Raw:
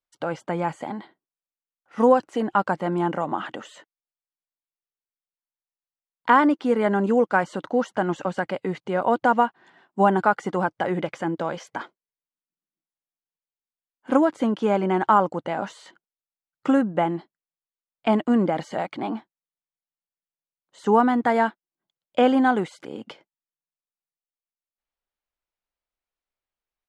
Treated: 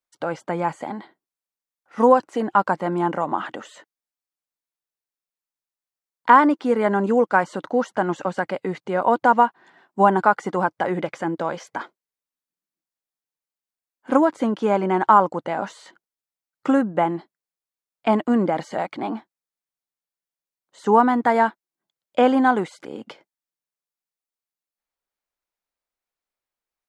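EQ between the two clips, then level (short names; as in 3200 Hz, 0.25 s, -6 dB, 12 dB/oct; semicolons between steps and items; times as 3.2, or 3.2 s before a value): bell 3000 Hz -3.5 dB 0.41 oct; dynamic EQ 1000 Hz, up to +4 dB, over -33 dBFS, Q 4.3; low shelf 110 Hz -8.5 dB; +2.0 dB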